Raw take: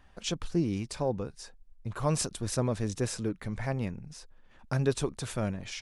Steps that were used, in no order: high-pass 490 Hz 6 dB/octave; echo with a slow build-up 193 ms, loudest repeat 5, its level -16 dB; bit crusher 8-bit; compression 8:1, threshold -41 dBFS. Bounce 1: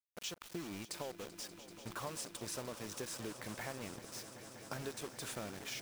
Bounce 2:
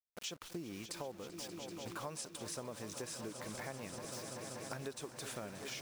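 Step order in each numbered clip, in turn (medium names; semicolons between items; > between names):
high-pass > compression > bit crusher > echo with a slow build-up; high-pass > bit crusher > echo with a slow build-up > compression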